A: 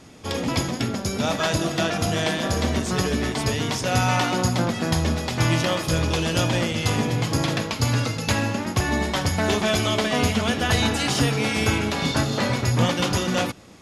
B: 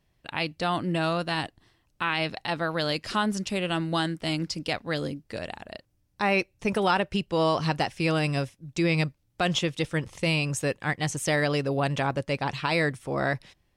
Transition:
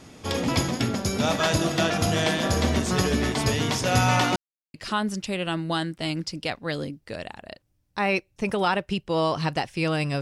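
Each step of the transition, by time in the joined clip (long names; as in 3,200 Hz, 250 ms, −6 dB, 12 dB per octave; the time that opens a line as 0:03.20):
A
0:04.36–0:04.74: silence
0:04.74: continue with B from 0:02.97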